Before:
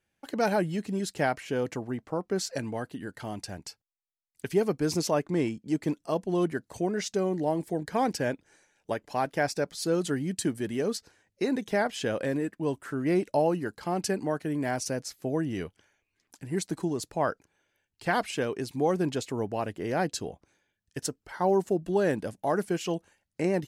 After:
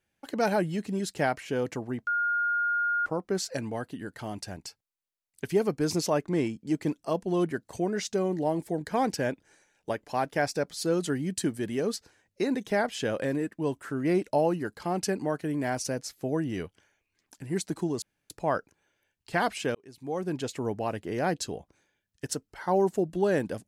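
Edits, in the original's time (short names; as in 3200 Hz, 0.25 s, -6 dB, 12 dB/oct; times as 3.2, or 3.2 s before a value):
2.07 add tone 1420 Hz -24 dBFS 0.99 s
17.03 insert room tone 0.28 s
18.48–19.33 fade in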